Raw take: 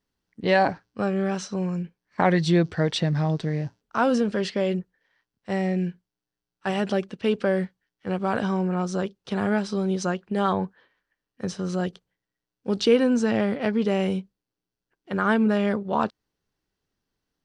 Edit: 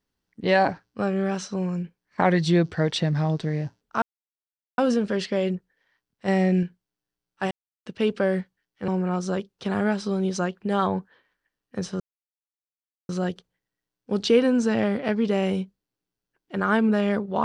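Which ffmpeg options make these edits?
ffmpeg -i in.wav -filter_complex "[0:a]asplit=8[link_01][link_02][link_03][link_04][link_05][link_06][link_07][link_08];[link_01]atrim=end=4.02,asetpts=PTS-STARTPTS,afade=type=out:start_time=4.016:duration=0.004:curve=hsin,apad=pad_dur=0.76[link_09];[link_02]atrim=start=4.02:end=5.522,asetpts=PTS-STARTPTS,afade=type=in:duration=0.004:curve=hsin[link_10];[link_03]atrim=start=5.518:end=5.872,asetpts=PTS-STARTPTS,volume=4dB[link_11];[link_04]atrim=start=5.868:end=6.75,asetpts=PTS-STARTPTS,afade=type=out:start_time=0.878:duration=0.004:curve=hsin[link_12];[link_05]atrim=start=6.75:end=7.1,asetpts=PTS-STARTPTS,volume=0[link_13];[link_06]atrim=start=7.1:end=8.122,asetpts=PTS-STARTPTS,afade=type=in:duration=0.004:curve=hsin[link_14];[link_07]atrim=start=8.538:end=11.66,asetpts=PTS-STARTPTS,afade=type=out:start_time=3.118:duration=0.004:curve=hsin,apad=pad_dur=1.09[link_15];[link_08]atrim=start=11.66,asetpts=PTS-STARTPTS,afade=type=in:duration=0.004:curve=hsin[link_16];[link_09][link_10]concat=n=2:v=0:a=1[link_17];[link_17][link_11]acrossfade=duration=0.004:curve1=hsin:curve2=hsin[link_18];[link_12][link_13][link_14]concat=n=3:v=0:a=1[link_19];[link_18][link_19]acrossfade=duration=0.004:curve1=hsin:curve2=hsin[link_20];[link_15][link_16]concat=n=2:v=0:a=1[link_21];[link_20][link_21]acrossfade=duration=0.004:curve1=hsin:curve2=hsin" out.wav

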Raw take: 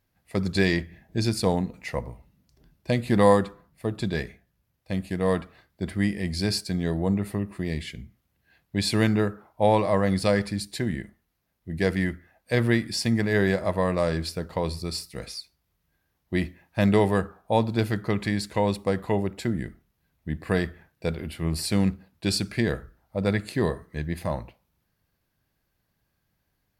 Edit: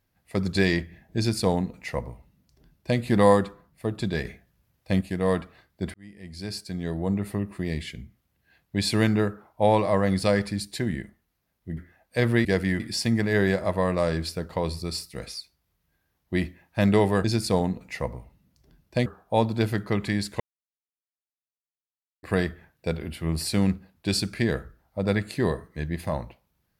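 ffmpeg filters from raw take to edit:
ffmpeg -i in.wav -filter_complex "[0:a]asplit=11[link_01][link_02][link_03][link_04][link_05][link_06][link_07][link_08][link_09][link_10][link_11];[link_01]atrim=end=4.252[link_12];[link_02]atrim=start=4.248:end=5.012,asetpts=PTS-STARTPTS,volume=5dB[link_13];[link_03]atrim=start=5.008:end=5.94,asetpts=PTS-STARTPTS,afade=type=out:start_time=0.928:duration=0.004:curve=hsin[link_14];[link_04]atrim=start=5.94:end=11.772,asetpts=PTS-STARTPTS,afade=type=in:duration=1.44[link_15];[link_05]atrim=start=12.118:end=12.802[link_16];[link_06]atrim=start=11.768:end=12.122[link_17];[link_07]atrim=start=12.798:end=17.242[link_18];[link_08]atrim=start=1.168:end=2.992[link_19];[link_09]atrim=start=17.238:end=18.58,asetpts=PTS-STARTPTS,afade=type=out:start_time=1.338:duration=0.004:curve=hsin[link_20];[link_10]atrim=start=18.58:end=20.41,asetpts=PTS-STARTPTS,volume=0[link_21];[link_11]atrim=start=20.41,asetpts=PTS-STARTPTS,afade=type=in:duration=0.004:curve=hsin[link_22];[link_12][link_13]acrossfade=duration=0.004:curve1=hsin:curve2=hsin[link_23];[link_14][link_15]concat=n=2:v=0:a=1[link_24];[link_23][link_24]acrossfade=duration=0.004:curve1=hsin:curve2=hsin[link_25];[link_25][link_16]acrossfade=duration=0.004:curve1=hsin:curve2=hsin[link_26];[link_26][link_17]acrossfade=duration=0.004:curve1=hsin:curve2=hsin[link_27];[link_27][link_18]acrossfade=duration=0.004:curve1=hsin:curve2=hsin[link_28];[link_28][link_19]acrossfade=duration=0.004:curve1=hsin:curve2=hsin[link_29];[link_20][link_21][link_22]concat=n=3:v=0:a=1[link_30];[link_29][link_30]acrossfade=duration=0.004:curve1=hsin:curve2=hsin" out.wav

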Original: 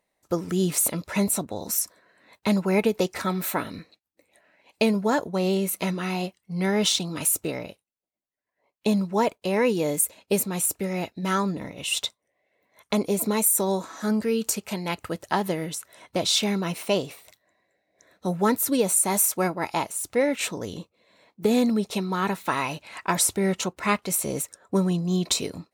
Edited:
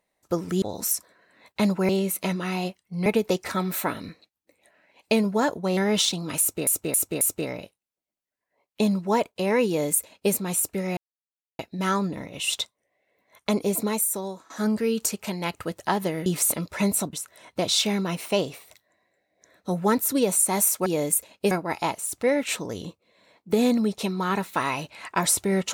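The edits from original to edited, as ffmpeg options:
ffmpeg -i in.wav -filter_complex "[0:a]asplit=14[link_01][link_02][link_03][link_04][link_05][link_06][link_07][link_08][link_09][link_10][link_11][link_12][link_13][link_14];[link_01]atrim=end=0.622[link_15];[link_02]atrim=start=1.488:end=2.762[link_16];[link_03]atrim=start=5.468:end=6.642[link_17];[link_04]atrim=start=2.758:end=5.472[link_18];[link_05]atrim=start=6.638:end=7.542[link_19];[link_06]atrim=start=7.268:end=7.542[link_20];[link_07]atrim=start=7.268:end=7.542[link_21];[link_08]atrim=start=7.268:end=11.03,asetpts=PTS-STARTPTS,afade=type=out:start_time=3.758:duration=0.004:curve=hsin,apad=pad_dur=0.62[link_22];[link_09]atrim=start=11.03:end=13.94,asetpts=PTS-STARTPTS,afade=type=in:duration=0.004:curve=hsin,afade=type=out:start_time=2.14:duration=0.77:silence=0.125893[link_23];[link_10]atrim=start=13.94:end=15.702,asetpts=PTS-STARTPTS,afade=type=in:duration=0.004:curve=hsin:silence=0.125893[link_24];[link_11]atrim=start=0.618:end=1.492[link_25];[link_12]atrim=start=15.698:end=19.432[link_26];[link_13]atrim=start=9.728:end=10.382[link_27];[link_14]atrim=start=19.428[link_28];[link_15][link_16]acrossfade=duration=0.004:curve1=hsin:curve2=hsin[link_29];[link_29][link_17]acrossfade=duration=0.004:curve1=hsin:curve2=hsin[link_30];[link_30][link_18]acrossfade=duration=0.004:curve1=hsin:curve2=hsin[link_31];[link_31][link_19]acrossfade=duration=0.004:curve1=hsin:curve2=hsin[link_32];[link_32][link_20]acrossfade=duration=0.004:curve1=hsin:curve2=hsin[link_33];[link_33][link_21]acrossfade=duration=0.004:curve1=hsin:curve2=hsin[link_34];[link_22][link_23][link_24]concat=n=3:v=0:a=1[link_35];[link_34][link_35]acrossfade=duration=0.004:curve1=hsin:curve2=hsin[link_36];[link_36][link_25]acrossfade=duration=0.004:curve1=hsin:curve2=hsin[link_37];[link_37][link_26]acrossfade=duration=0.004:curve1=hsin:curve2=hsin[link_38];[link_38][link_27]acrossfade=duration=0.004:curve1=hsin:curve2=hsin[link_39];[link_39][link_28]acrossfade=duration=0.004:curve1=hsin:curve2=hsin" out.wav

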